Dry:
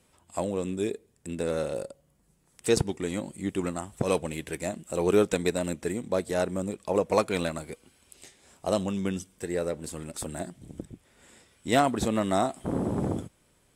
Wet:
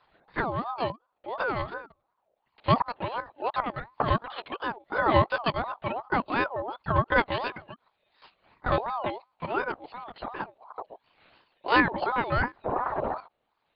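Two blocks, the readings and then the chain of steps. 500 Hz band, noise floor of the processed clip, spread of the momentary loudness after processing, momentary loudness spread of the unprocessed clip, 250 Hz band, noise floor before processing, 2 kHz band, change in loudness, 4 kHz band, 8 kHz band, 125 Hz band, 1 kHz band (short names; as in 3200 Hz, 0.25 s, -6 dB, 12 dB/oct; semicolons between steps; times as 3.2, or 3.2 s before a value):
-3.5 dB, -77 dBFS, 15 LU, 14 LU, -4.5 dB, -66 dBFS, +8.5 dB, +0.5 dB, +0.5 dB, under -40 dB, +0.5 dB, +6.5 dB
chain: reverb removal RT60 1.4 s; monotone LPC vocoder at 8 kHz 240 Hz; ring modulator with a swept carrier 800 Hz, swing 30%, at 2.8 Hz; gain +4.5 dB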